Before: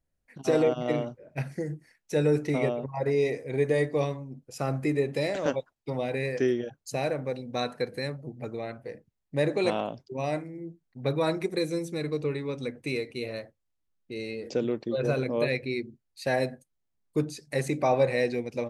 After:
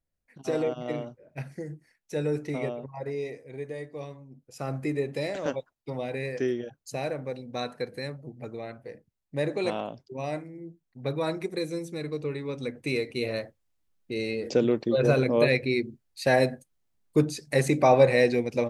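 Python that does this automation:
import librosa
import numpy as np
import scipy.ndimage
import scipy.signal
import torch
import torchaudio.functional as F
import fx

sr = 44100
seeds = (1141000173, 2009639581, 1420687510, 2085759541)

y = fx.gain(x, sr, db=fx.line((2.75, -4.5), (3.87, -13.0), (4.75, -2.5), (12.24, -2.5), (13.31, 5.0)))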